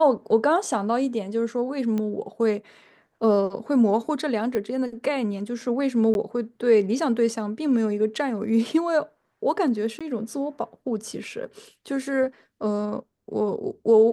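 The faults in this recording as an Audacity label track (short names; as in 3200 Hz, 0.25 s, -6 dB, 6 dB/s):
1.980000	1.980000	pop -17 dBFS
4.550000	4.550000	pop -15 dBFS
6.140000	6.150000	gap 11 ms
9.990000	10.010000	gap 16 ms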